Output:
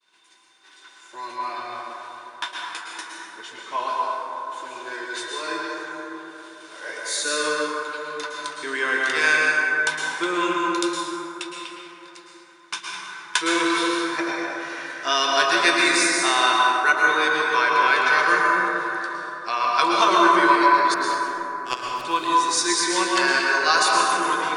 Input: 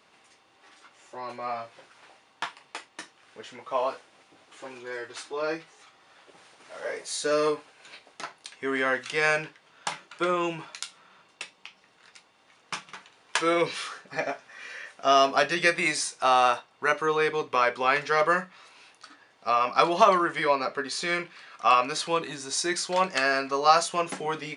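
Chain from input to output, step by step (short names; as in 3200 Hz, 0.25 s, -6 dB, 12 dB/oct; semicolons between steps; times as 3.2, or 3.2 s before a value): small resonant body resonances 340/1000/1500/3600 Hz, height 14 dB, ringing for 45 ms; expander -50 dBFS; tilt shelf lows -9 dB, about 1400 Hz; 20.94–22.05 power-law curve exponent 3; plate-style reverb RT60 3.8 s, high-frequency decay 0.3×, pre-delay 0.1 s, DRR -3 dB; gain -2.5 dB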